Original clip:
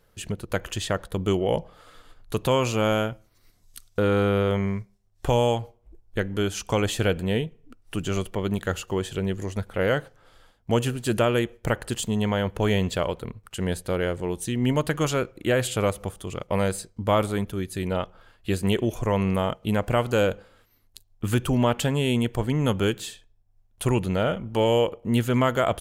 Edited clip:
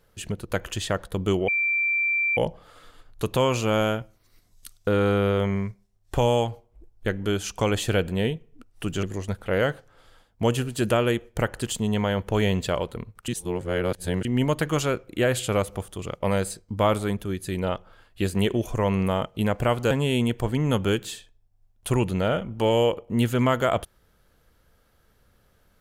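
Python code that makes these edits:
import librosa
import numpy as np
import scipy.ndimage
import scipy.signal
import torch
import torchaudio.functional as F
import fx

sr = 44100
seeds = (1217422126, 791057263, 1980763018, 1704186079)

y = fx.edit(x, sr, fx.insert_tone(at_s=1.48, length_s=0.89, hz=2350.0, db=-20.5),
    fx.cut(start_s=8.14, length_s=1.17),
    fx.reverse_span(start_s=13.56, length_s=0.97),
    fx.cut(start_s=20.19, length_s=1.67), tone=tone)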